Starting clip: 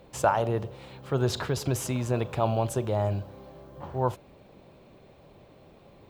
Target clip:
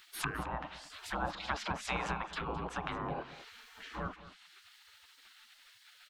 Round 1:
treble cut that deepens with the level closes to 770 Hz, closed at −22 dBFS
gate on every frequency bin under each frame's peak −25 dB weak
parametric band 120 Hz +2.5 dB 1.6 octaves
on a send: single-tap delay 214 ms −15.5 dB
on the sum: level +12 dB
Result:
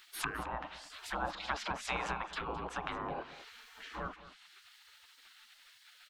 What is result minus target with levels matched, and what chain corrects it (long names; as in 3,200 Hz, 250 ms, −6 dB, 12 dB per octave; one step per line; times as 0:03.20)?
125 Hz band −5.0 dB
treble cut that deepens with the level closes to 770 Hz, closed at −22 dBFS
gate on every frequency bin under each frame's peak −25 dB weak
parametric band 120 Hz +10.5 dB 1.6 octaves
on a send: single-tap delay 214 ms −15.5 dB
on the sum: level +12 dB